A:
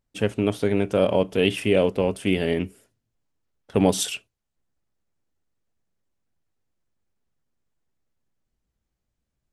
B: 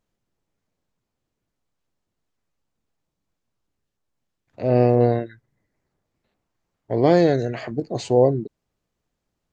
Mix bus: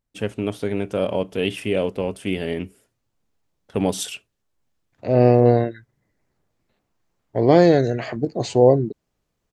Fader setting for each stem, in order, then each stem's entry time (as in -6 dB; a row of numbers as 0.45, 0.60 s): -2.5, +2.5 dB; 0.00, 0.45 s